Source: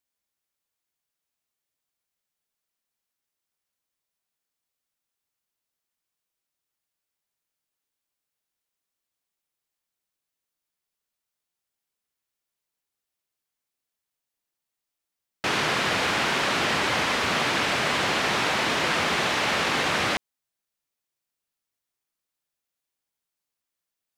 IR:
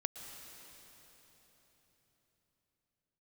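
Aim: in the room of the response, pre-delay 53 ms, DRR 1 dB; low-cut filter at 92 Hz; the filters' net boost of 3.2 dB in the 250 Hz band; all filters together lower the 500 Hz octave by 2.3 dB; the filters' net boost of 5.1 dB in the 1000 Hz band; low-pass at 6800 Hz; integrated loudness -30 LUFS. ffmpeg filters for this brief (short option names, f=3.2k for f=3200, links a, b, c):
-filter_complex "[0:a]highpass=92,lowpass=6.8k,equalizer=f=250:t=o:g=6,equalizer=f=500:t=o:g=-7.5,equalizer=f=1k:t=o:g=8,asplit=2[a][b];[1:a]atrim=start_sample=2205,adelay=53[c];[b][c]afir=irnorm=-1:irlink=0,volume=-1dB[d];[a][d]amix=inputs=2:normalize=0,volume=-11dB"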